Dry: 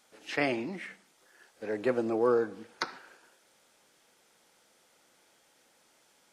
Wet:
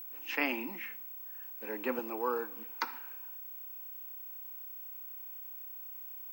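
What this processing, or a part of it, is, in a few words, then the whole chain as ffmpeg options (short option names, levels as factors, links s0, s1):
old television with a line whistle: -filter_complex "[0:a]highpass=f=230:w=0.5412,highpass=f=230:w=1.3066,equalizer=f=250:t=q:w=4:g=4,equalizer=f=390:t=q:w=4:g=-6,equalizer=f=640:t=q:w=4:g=-9,equalizer=f=950:t=q:w=4:g=9,equalizer=f=2600:t=q:w=4:g=8,equalizer=f=4000:t=q:w=4:g=-6,lowpass=f=7400:w=0.5412,lowpass=f=7400:w=1.3066,aeval=exprs='val(0)+0.0112*sin(2*PI*15734*n/s)':c=same,asettb=1/sr,asplit=3[s0][s1][s2];[s0]atrim=end=1.994[s3];[s1]atrim=start=1.99:end=2.56,asetpts=PTS-STARTPTS,afade=t=in:d=0.004:c=qsin,afade=t=out:st=0.566:d=0.004:c=qsin,highpass=f=480:p=1[s4];[s2]atrim=start=2.556[s5];[s3][s4]acrossfade=d=0.004:c1=hsin:c2=qsin[s6];[s6][s5]acrossfade=d=0.004:c1=qsin:c2=hsin,volume=0.668"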